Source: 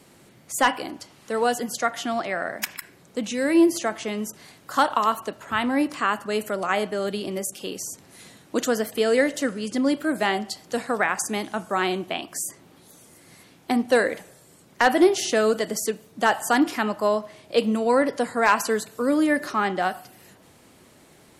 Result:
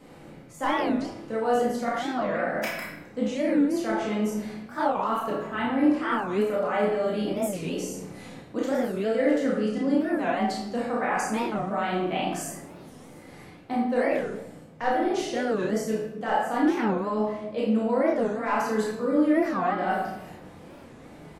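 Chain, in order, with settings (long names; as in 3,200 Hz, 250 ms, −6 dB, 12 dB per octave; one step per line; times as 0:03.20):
parametric band 12,000 Hz −13.5 dB 2.8 octaves
reversed playback
downward compressor 4 to 1, threshold −32 dBFS, peak gain reduction 16.5 dB
reversed playback
double-tracking delay 33 ms −4.5 dB
rectangular room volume 310 cubic metres, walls mixed, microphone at 2 metres
wow of a warped record 45 rpm, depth 250 cents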